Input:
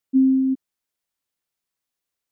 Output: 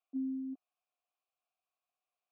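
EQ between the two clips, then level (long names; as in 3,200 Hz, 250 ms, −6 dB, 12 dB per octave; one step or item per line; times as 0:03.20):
formant filter a
parametric band 190 Hz −12.5 dB 0.77 octaves
+8.0 dB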